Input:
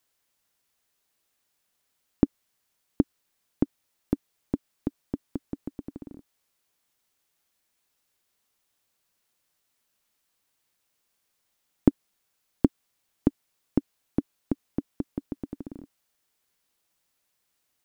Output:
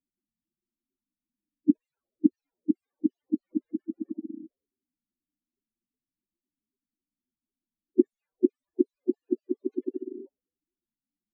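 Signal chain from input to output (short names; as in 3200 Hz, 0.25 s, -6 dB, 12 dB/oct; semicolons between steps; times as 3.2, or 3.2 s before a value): speed glide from 127% -> 188%; low-pass opened by the level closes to 400 Hz, open at -30.5 dBFS; loudest bins only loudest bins 8; formant-preserving pitch shift -8.5 st; graphic EQ 125/250/500/2000 Hz -7/+9/+9/+10 dB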